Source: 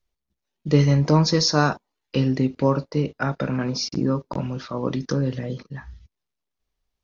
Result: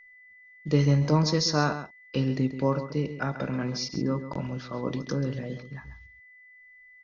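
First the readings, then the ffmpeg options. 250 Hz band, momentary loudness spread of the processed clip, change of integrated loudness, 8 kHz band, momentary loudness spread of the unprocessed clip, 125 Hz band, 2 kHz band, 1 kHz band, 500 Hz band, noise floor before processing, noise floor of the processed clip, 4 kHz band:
-5.0 dB, 14 LU, -5.0 dB, no reading, 14 LU, -4.5 dB, -4.5 dB, -5.0 dB, -5.0 dB, -83 dBFS, -54 dBFS, -5.5 dB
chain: -filter_complex "[0:a]asplit=2[s0][s1];[s1]adelay=134.1,volume=0.282,highshelf=f=4000:g=-3.02[s2];[s0][s2]amix=inputs=2:normalize=0,aeval=exprs='val(0)+0.00562*sin(2*PI*2000*n/s)':c=same,volume=0.531"

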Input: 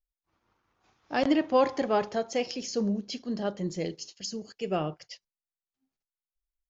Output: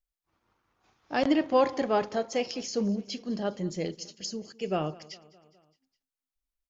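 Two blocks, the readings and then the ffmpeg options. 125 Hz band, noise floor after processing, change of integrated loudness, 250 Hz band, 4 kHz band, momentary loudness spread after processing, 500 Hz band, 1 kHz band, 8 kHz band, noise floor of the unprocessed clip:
0.0 dB, under -85 dBFS, 0.0 dB, 0.0 dB, 0.0 dB, 12 LU, 0.0 dB, 0.0 dB, no reading, under -85 dBFS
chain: -af "aecho=1:1:206|412|618|824:0.0794|0.0469|0.0277|0.0163"

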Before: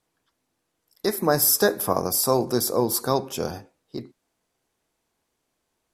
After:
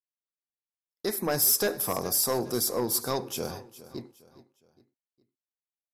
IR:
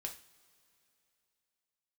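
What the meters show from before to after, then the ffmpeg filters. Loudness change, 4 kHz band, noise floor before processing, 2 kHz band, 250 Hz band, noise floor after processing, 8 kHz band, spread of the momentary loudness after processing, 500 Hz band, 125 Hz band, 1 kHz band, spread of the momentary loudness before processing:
-4.0 dB, -3.0 dB, -77 dBFS, -6.0 dB, -6.5 dB, under -85 dBFS, -2.5 dB, 21 LU, -7.0 dB, -7.0 dB, -7.5 dB, 20 LU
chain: -filter_complex "[0:a]agate=range=0.0224:threshold=0.00631:ratio=3:detection=peak,asoftclip=type=tanh:threshold=0.2,asplit=2[s0][s1];[s1]aecho=0:1:412|824|1236:0.141|0.0579|0.0237[s2];[s0][s2]amix=inputs=2:normalize=0,adynamicequalizer=threshold=0.0126:dfrequency=2100:dqfactor=0.7:tfrequency=2100:tqfactor=0.7:attack=5:release=100:ratio=0.375:range=2:mode=boostabove:tftype=highshelf,volume=0.562"

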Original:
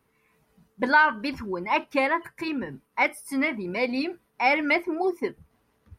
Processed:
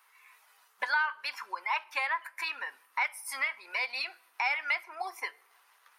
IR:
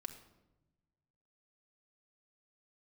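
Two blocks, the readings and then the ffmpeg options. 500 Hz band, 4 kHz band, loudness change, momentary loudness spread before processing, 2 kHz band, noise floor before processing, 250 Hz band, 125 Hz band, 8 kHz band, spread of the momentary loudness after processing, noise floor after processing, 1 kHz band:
-20.0 dB, -2.5 dB, -7.0 dB, 12 LU, -5.5 dB, -70 dBFS, under -35 dB, under -40 dB, +1.0 dB, 9 LU, -66 dBFS, -8.5 dB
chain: -filter_complex "[0:a]highpass=f=920:w=0.5412,highpass=f=920:w=1.3066,acompressor=threshold=0.00562:ratio=2.5,asplit=2[s0][s1];[1:a]atrim=start_sample=2205[s2];[s1][s2]afir=irnorm=-1:irlink=0,volume=0.355[s3];[s0][s3]amix=inputs=2:normalize=0,volume=2.51"

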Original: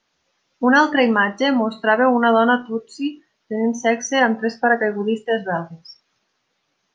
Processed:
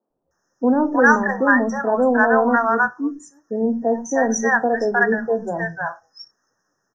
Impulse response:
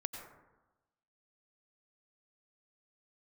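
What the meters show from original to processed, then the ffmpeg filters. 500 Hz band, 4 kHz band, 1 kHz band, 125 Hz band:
0.0 dB, under -15 dB, -0.5 dB, -1.0 dB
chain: -filter_complex "[0:a]aeval=exprs='0.708*(cos(1*acos(clip(val(0)/0.708,-1,1)))-cos(1*PI/2))+0.00501*(cos(6*acos(clip(val(0)/0.708,-1,1)))-cos(6*PI/2))':c=same,afftfilt=real='re*(1-between(b*sr/4096,1900,5100))':imag='im*(1-between(b*sr/4096,1900,5100))':win_size=4096:overlap=0.75,acrossover=split=190|750[s0][s1][s2];[s0]adelay=100[s3];[s2]adelay=310[s4];[s3][s1][s4]amix=inputs=3:normalize=0,volume=1.26"

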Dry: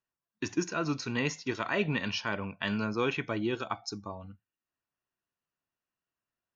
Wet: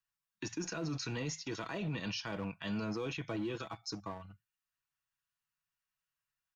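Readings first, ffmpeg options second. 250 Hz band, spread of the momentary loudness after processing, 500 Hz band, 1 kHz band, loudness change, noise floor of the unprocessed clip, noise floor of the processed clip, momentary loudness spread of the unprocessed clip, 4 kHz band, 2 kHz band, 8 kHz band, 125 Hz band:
-6.0 dB, 7 LU, -8.0 dB, -9.0 dB, -7.0 dB, under -85 dBFS, under -85 dBFS, 10 LU, -5.0 dB, -10.0 dB, no reading, -4.0 dB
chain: -filter_complex "[0:a]aecho=1:1:6.2:0.48,acrossover=split=150|890|3400[s0][s1][s2][s3];[s1]aeval=exprs='sgn(val(0))*max(abs(val(0))-0.00501,0)':c=same[s4];[s2]acompressor=threshold=0.00631:ratio=6[s5];[s0][s4][s5][s3]amix=inputs=4:normalize=0,alimiter=level_in=2:limit=0.0631:level=0:latency=1:release=12,volume=0.501"

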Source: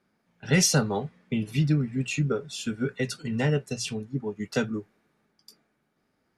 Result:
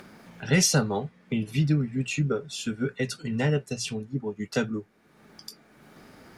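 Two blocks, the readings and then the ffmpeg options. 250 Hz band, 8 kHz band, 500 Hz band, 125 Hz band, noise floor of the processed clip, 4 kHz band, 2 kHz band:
0.0 dB, 0.0 dB, 0.0 dB, 0.0 dB, -60 dBFS, 0.0 dB, 0.0 dB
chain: -af "acompressor=mode=upward:threshold=0.0282:ratio=2.5"

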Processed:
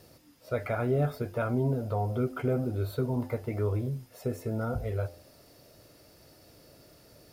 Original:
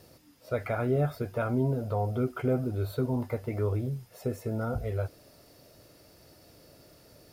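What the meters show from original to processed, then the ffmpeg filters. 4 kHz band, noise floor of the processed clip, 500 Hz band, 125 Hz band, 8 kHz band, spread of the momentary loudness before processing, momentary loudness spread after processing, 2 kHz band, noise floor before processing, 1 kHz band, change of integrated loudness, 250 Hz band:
0.0 dB, -58 dBFS, -0.5 dB, 0.0 dB, no reading, 7 LU, 7 LU, 0.0 dB, -58 dBFS, 0.0 dB, -0.5 dB, -0.5 dB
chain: -af "bandreject=f=86.17:t=h:w=4,bandreject=f=172.34:t=h:w=4,bandreject=f=258.51:t=h:w=4,bandreject=f=344.68:t=h:w=4,bandreject=f=430.85:t=h:w=4,bandreject=f=517.02:t=h:w=4,bandreject=f=603.19:t=h:w=4,bandreject=f=689.36:t=h:w=4,bandreject=f=775.53:t=h:w=4,bandreject=f=861.7:t=h:w=4,bandreject=f=947.87:t=h:w=4,bandreject=f=1034.04:t=h:w=4,bandreject=f=1120.21:t=h:w=4,asoftclip=type=hard:threshold=0.133"

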